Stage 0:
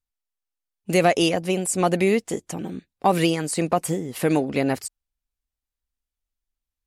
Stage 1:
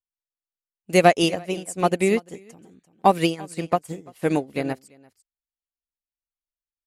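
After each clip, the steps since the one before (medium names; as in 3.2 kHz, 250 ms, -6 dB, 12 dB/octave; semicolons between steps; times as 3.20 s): delay 342 ms -11.5 dB; upward expansion 2.5:1, over -30 dBFS; trim +5 dB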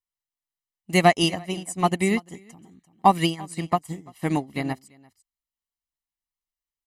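comb 1 ms, depth 66%; trim -1.5 dB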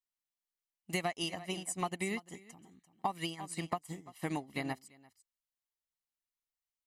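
bass shelf 470 Hz -6.5 dB; compression 12:1, threshold -27 dBFS, peak gain reduction 15.5 dB; trim -4 dB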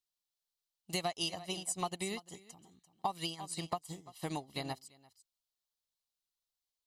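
graphic EQ 250/2000/4000 Hz -7/-10/+8 dB; trim +1 dB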